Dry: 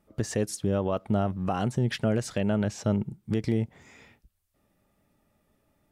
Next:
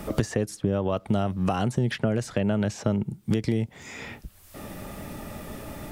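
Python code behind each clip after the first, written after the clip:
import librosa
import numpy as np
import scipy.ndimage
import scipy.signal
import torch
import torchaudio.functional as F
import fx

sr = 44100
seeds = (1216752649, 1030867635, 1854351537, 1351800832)

y = fx.band_squash(x, sr, depth_pct=100)
y = y * librosa.db_to_amplitude(1.5)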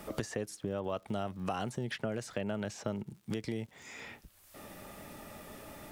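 y = fx.low_shelf(x, sr, hz=270.0, db=-9.0)
y = fx.dmg_crackle(y, sr, seeds[0], per_s=130.0, level_db=-45.0)
y = y * librosa.db_to_amplitude(-7.0)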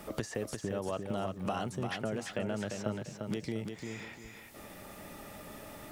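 y = fx.echo_feedback(x, sr, ms=347, feedback_pct=30, wet_db=-5.5)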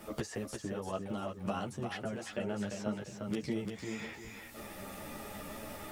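y = fx.rider(x, sr, range_db=4, speed_s=2.0)
y = fx.ensemble(y, sr)
y = y * librosa.db_to_amplitude(2.0)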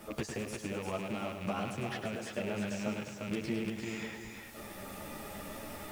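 y = fx.rattle_buzz(x, sr, strikes_db=-42.0, level_db=-34.0)
y = fx.echo_crushed(y, sr, ms=104, feedback_pct=55, bits=9, wet_db=-7)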